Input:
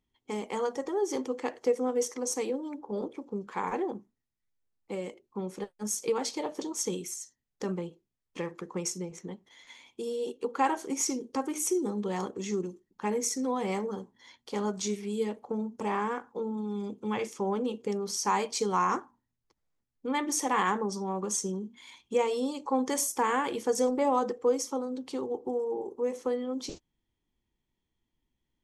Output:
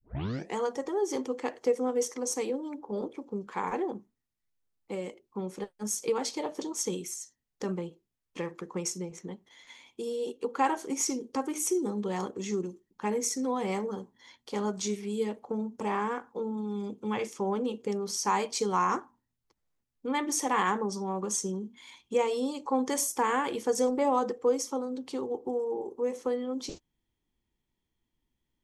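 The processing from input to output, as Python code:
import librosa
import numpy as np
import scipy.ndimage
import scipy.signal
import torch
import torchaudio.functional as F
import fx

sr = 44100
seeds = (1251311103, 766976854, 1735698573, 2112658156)

y = fx.tape_start_head(x, sr, length_s=0.56)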